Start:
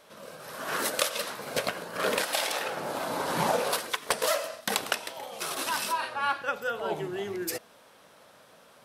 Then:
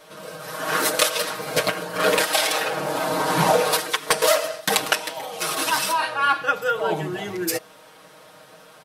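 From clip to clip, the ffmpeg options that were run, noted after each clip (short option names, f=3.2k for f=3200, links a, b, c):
-af "aecho=1:1:6.4:0.91,volume=5.5dB"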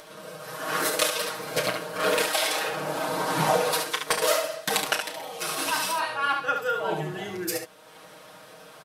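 -filter_complex "[0:a]acompressor=mode=upward:threshold=-36dB:ratio=2.5,asplit=2[a][b];[b]aecho=0:1:32|71:0.316|0.473[c];[a][c]amix=inputs=2:normalize=0,volume=-5.5dB"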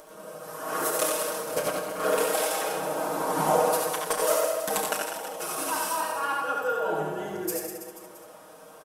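-af "equalizer=f=125:t=o:w=1:g=-10,equalizer=f=2k:t=o:w=1:g=-8,equalizer=f=4k:t=o:w=1:g=-11,aecho=1:1:90|198|327.6|483.1|669.7:0.631|0.398|0.251|0.158|0.1"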